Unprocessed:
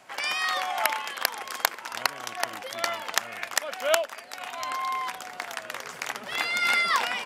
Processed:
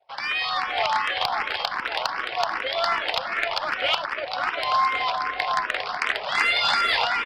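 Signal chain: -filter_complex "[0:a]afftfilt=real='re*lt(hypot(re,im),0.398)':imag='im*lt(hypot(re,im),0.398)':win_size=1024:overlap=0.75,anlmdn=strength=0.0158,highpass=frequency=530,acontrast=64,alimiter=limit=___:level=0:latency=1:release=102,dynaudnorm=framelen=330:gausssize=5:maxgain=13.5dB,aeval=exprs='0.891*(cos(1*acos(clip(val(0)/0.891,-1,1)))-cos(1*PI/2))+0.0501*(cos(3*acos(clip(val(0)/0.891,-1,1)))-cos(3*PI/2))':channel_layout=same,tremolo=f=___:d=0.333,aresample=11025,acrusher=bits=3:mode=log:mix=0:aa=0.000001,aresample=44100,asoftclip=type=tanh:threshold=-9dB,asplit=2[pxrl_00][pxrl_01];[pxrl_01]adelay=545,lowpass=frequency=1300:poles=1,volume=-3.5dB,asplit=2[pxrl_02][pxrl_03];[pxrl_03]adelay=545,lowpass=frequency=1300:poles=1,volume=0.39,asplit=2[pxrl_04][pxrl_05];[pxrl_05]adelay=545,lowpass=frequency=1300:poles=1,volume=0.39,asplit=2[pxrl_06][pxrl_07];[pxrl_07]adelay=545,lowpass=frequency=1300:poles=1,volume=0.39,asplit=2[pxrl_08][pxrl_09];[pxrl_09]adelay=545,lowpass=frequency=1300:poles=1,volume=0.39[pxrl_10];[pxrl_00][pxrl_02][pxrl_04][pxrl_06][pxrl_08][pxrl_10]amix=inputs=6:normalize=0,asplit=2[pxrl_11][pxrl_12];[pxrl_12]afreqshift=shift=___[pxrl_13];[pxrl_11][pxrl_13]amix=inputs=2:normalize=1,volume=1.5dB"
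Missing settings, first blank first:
-8.5dB, 250, 2.6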